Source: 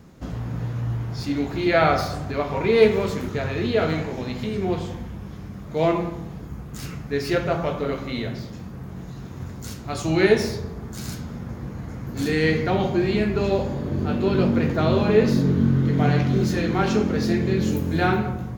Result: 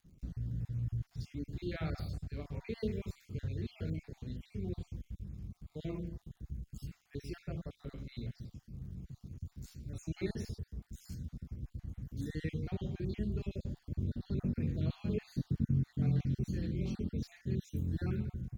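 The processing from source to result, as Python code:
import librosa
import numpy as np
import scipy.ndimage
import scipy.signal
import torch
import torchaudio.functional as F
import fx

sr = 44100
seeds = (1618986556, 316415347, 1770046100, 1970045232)

y = fx.spec_dropout(x, sr, seeds[0], share_pct=42)
y = fx.dmg_crackle(y, sr, seeds[1], per_s=100.0, level_db=-42.0)
y = fx.tone_stack(y, sr, knobs='10-0-1')
y = y * librosa.db_to_amplitude(3.0)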